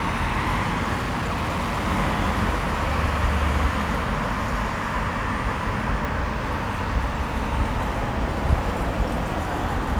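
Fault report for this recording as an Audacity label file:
0.950000	1.880000	clipped -22 dBFS
6.050000	6.050000	pop

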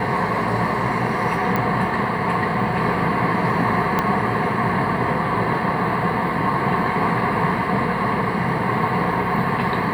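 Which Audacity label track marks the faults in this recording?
1.560000	1.560000	pop -9 dBFS
3.990000	3.990000	pop -6 dBFS

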